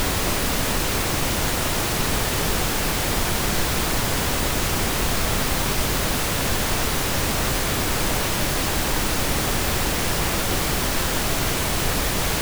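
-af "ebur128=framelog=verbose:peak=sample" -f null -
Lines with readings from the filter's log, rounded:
Integrated loudness:
  I:         -21.8 LUFS
  Threshold: -31.8 LUFS
Loudness range:
  LRA:         0.1 LU
  Threshold: -41.8 LUFS
  LRA low:   -21.9 LUFS
  LRA high:  -21.8 LUFS
Sample peak:
  Peak:       -8.4 dBFS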